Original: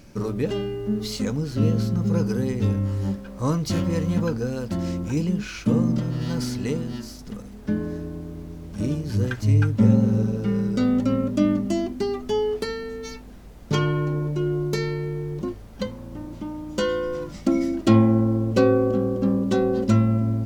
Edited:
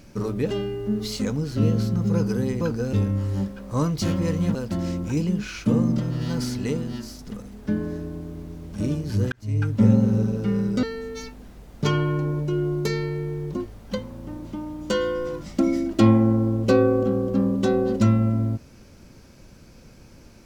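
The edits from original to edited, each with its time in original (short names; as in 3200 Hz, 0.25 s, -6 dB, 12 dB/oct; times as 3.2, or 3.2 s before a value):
4.23–4.55 move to 2.61
9.32–9.8 fade in
10.83–12.71 cut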